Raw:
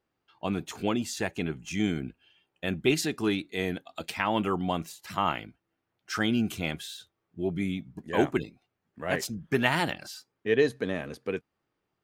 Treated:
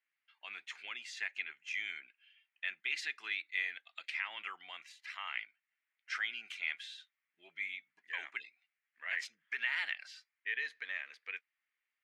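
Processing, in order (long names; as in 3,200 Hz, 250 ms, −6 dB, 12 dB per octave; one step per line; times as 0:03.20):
brickwall limiter −18.5 dBFS, peak gain reduction 10.5 dB
four-pole ladder band-pass 2,300 Hz, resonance 60%
level +6.5 dB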